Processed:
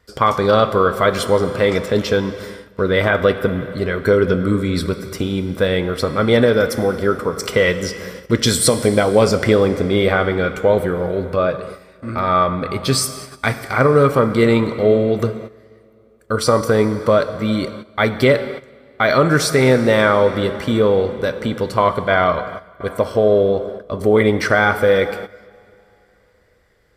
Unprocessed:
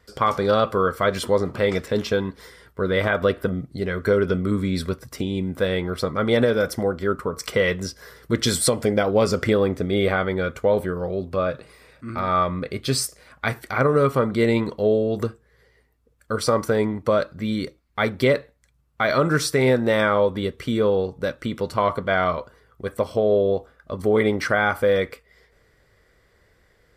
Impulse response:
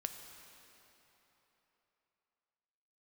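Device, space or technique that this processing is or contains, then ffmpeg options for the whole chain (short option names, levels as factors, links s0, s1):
keyed gated reverb: -filter_complex "[0:a]asplit=3[s0][s1][s2];[1:a]atrim=start_sample=2205[s3];[s1][s3]afir=irnorm=-1:irlink=0[s4];[s2]apad=whole_len=1189171[s5];[s4][s5]sidechaingate=range=0.224:threshold=0.00447:ratio=16:detection=peak,volume=1.88[s6];[s0][s6]amix=inputs=2:normalize=0,volume=0.75"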